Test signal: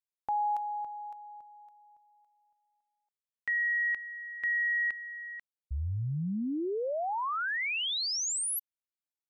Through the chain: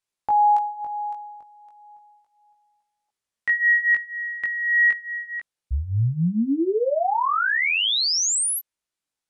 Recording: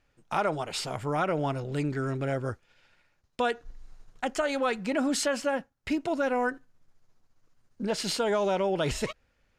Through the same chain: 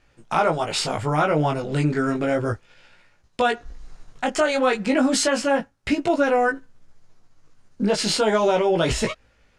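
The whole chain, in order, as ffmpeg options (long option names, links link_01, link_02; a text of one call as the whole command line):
ffmpeg -i in.wav -filter_complex "[0:a]lowpass=frequency=11000:width=0.5412,lowpass=frequency=11000:width=1.3066,asplit=2[link_01][link_02];[link_02]alimiter=level_in=1.5dB:limit=-24dB:level=0:latency=1:release=201,volume=-1.5dB,volume=-0.5dB[link_03];[link_01][link_03]amix=inputs=2:normalize=0,flanger=delay=17.5:depth=2.2:speed=0.33,volume=7.5dB" out.wav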